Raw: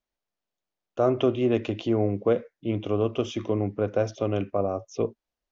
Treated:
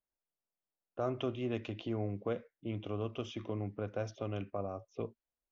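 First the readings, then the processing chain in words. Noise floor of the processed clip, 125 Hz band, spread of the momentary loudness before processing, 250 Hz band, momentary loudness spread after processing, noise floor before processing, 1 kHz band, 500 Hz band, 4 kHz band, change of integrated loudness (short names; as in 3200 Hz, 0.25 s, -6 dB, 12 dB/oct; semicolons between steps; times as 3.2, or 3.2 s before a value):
under -85 dBFS, -9.5 dB, 8 LU, -12.5 dB, 6 LU, under -85 dBFS, -11.0 dB, -14.0 dB, -9.0 dB, -12.5 dB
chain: dynamic EQ 420 Hz, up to -6 dB, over -32 dBFS, Q 0.74; low-pass opened by the level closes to 1600 Hz, open at -22 dBFS; gain -8.5 dB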